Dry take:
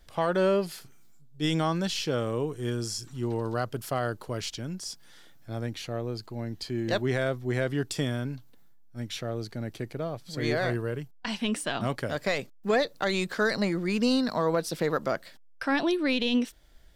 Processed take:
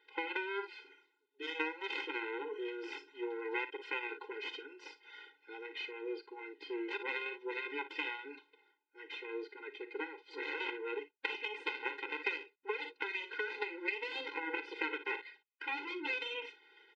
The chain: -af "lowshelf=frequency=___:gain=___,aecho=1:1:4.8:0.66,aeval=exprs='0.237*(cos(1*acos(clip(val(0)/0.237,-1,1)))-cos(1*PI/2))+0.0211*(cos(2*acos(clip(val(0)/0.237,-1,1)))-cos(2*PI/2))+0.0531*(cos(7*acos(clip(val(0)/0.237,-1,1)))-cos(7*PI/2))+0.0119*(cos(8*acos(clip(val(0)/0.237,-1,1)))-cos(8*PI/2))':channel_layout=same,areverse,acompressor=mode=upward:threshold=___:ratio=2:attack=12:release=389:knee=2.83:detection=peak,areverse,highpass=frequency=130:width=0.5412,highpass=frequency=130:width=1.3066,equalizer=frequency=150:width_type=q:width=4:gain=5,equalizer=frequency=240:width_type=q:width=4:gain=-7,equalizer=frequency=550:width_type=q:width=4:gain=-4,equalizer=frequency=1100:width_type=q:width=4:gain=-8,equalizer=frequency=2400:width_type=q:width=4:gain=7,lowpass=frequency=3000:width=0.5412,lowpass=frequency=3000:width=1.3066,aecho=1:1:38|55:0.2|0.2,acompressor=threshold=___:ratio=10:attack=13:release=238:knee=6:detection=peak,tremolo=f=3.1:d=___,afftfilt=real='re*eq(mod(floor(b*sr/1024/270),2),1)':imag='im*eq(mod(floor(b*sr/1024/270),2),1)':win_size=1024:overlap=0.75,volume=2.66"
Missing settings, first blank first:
420, -9.5, 0.00562, 0.0126, 0.4